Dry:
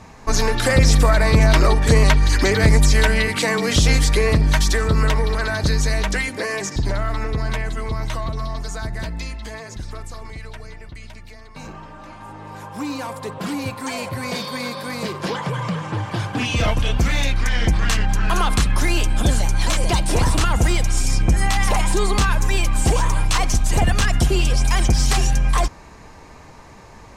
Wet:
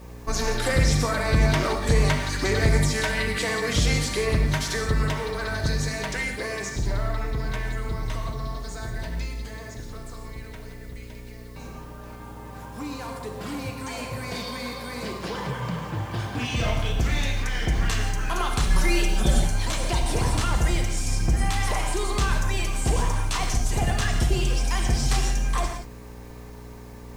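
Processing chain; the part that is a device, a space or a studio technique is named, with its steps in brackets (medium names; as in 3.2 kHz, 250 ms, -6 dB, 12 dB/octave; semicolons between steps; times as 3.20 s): video cassette with head-switching buzz (mains buzz 60 Hz, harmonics 9, -37 dBFS -4 dB/octave; white noise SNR 35 dB); 18.63–19.40 s: comb 5.3 ms, depth 100%; gated-style reverb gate 200 ms flat, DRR 3 dB; trim -7.5 dB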